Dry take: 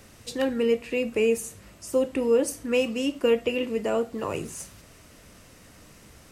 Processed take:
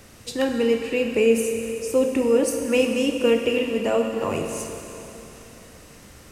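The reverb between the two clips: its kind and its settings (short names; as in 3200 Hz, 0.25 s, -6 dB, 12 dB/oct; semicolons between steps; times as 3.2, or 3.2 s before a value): Schroeder reverb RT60 3.3 s, combs from 31 ms, DRR 4 dB; gain +3 dB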